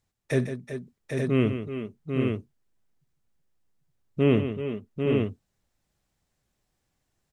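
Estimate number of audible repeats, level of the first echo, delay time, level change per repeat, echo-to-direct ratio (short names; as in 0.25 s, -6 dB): 5, -17.0 dB, 55 ms, no steady repeat, -1.0 dB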